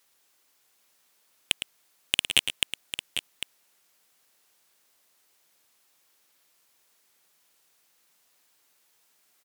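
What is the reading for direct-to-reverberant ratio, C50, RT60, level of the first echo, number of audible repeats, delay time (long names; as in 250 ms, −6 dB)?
no reverb audible, no reverb audible, no reverb audible, −9.5 dB, 2, 109 ms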